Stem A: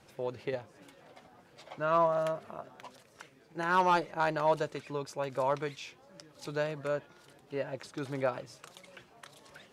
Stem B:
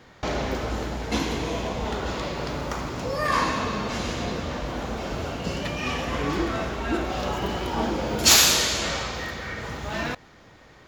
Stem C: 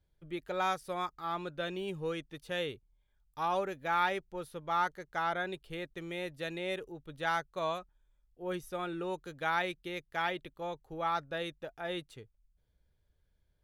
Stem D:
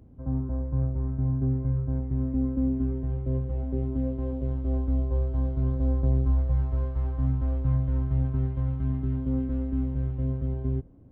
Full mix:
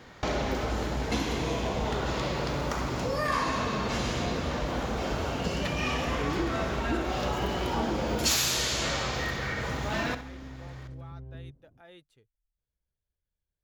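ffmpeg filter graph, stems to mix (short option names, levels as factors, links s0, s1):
-filter_complex "[0:a]adelay=1450,volume=0.112[s0];[1:a]acompressor=threshold=0.0398:ratio=3,volume=1.12,asplit=2[s1][s2];[s2]volume=0.237[s3];[2:a]alimiter=level_in=1.88:limit=0.0631:level=0:latency=1:release=30,volume=0.531,volume=0.2[s4];[3:a]equalizer=f=140:t=o:w=0.22:g=8.5,alimiter=level_in=1.06:limit=0.0631:level=0:latency=1:release=88,volume=0.944,adelay=700,volume=0.251[s5];[s3]aecho=0:1:65|130|195|260|325:1|0.33|0.109|0.0359|0.0119[s6];[s0][s1][s4][s5][s6]amix=inputs=5:normalize=0"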